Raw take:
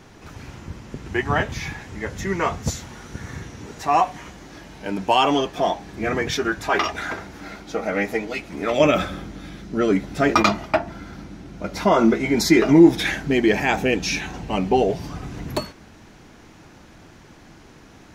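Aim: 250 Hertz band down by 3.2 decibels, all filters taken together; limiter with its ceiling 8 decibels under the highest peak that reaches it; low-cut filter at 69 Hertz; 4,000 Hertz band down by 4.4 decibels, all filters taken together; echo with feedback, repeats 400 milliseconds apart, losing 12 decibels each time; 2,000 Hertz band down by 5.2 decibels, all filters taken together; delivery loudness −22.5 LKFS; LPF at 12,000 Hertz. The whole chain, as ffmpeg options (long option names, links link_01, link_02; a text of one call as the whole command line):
ffmpeg -i in.wav -af "highpass=69,lowpass=12000,equalizer=frequency=250:width_type=o:gain=-4.5,equalizer=frequency=2000:width_type=o:gain=-5.5,equalizer=frequency=4000:width_type=o:gain=-4,alimiter=limit=-12.5dB:level=0:latency=1,aecho=1:1:400|800|1200:0.251|0.0628|0.0157,volume=3.5dB" out.wav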